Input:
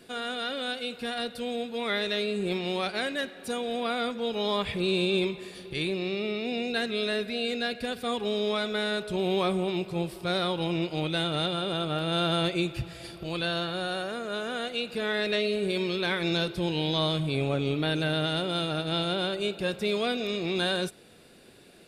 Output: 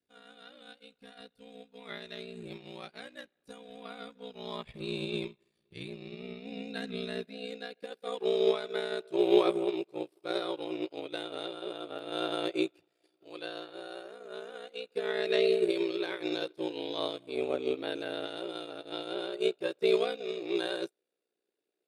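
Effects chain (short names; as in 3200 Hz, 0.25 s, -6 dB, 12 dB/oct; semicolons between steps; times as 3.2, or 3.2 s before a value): high-pass sweep 74 Hz -> 390 Hz, 5.2–7.93; ring modulator 30 Hz; upward expander 2.5:1, over -45 dBFS; gain +3.5 dB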